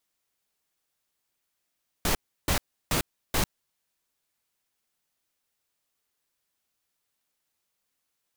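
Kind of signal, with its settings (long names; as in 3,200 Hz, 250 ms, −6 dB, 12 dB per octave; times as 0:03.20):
noise bursts pink, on 0.10 s, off 0.33 s, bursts 4, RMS −24.5 dBFS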